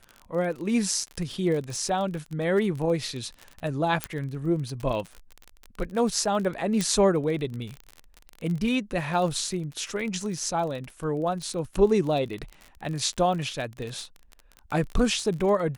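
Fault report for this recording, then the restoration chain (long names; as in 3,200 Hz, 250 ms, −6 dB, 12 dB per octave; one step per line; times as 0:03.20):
surface crackle 30 per second −31 dBFS
0:04.04: click −10 dBFS
0:06.81: click −12 dBFS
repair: click removal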